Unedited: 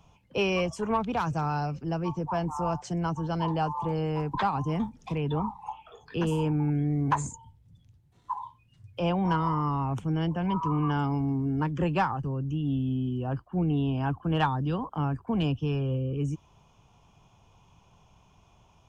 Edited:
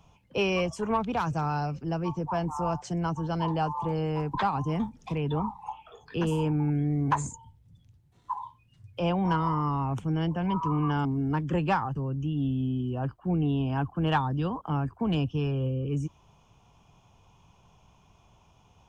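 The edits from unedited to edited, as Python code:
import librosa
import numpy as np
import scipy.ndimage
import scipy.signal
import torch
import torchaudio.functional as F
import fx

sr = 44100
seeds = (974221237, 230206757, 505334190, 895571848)

y = fx.edit(x, sr, fx.cut(start_s=11.05, length_s=0.28), tone=tone)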